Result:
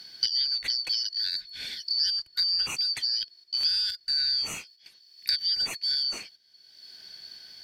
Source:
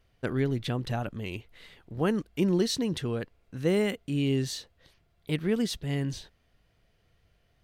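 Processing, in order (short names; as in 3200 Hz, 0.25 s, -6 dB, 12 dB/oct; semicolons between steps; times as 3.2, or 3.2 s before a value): four-band scrambler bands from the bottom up 4321; gate -56 dBFS, range -10 dB; three-band squash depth 100%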